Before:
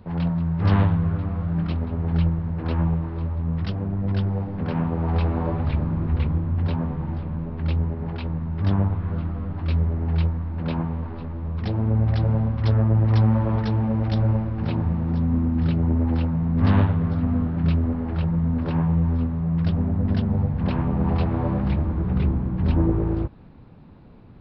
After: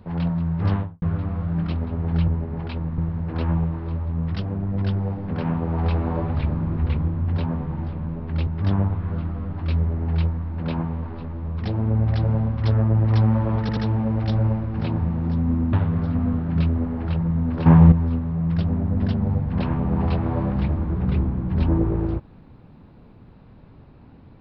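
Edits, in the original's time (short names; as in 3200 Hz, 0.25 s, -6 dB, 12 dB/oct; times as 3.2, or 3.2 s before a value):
0.54–1.02 studio fade out
7.77–8.47 move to 2.28
13.61 stutter 0.08 s, 3 plays
15.57–16.81 cut
18.74–19 gain +10 dB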